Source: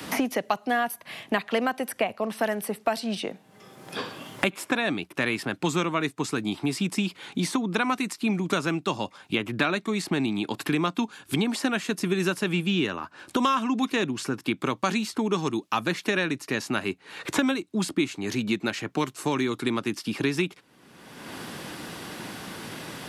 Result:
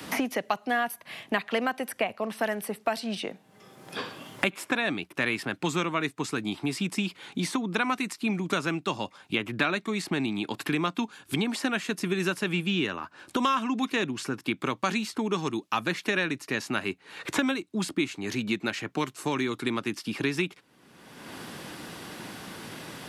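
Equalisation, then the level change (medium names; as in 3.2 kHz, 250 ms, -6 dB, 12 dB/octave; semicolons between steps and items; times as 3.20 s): dynamic bell 2.1 kHz, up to +3 dB, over -39 dBFS, Q 0.85; -3.0 dB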